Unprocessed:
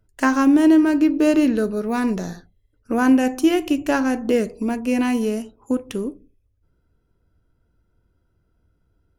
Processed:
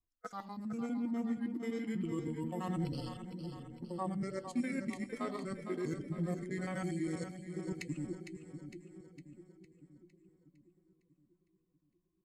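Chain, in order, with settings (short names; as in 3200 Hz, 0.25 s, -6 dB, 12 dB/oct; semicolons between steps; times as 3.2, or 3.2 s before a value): local time reversal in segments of 61 ms; low shelf 230 Hz -7 dB; reverse; compressor 6:1, threshold -27 dBFS, peak gain reduction 13 dB; reverse; spectral noise reduction 13 dB; varispeed -25%; flange 0.29 Hz, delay 2.7 ms, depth 7.9 ms, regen +60%; split-band echo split 440 Hz, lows 0.641 s, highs 0.457 s, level -8.5 dB; gain -2.5 dB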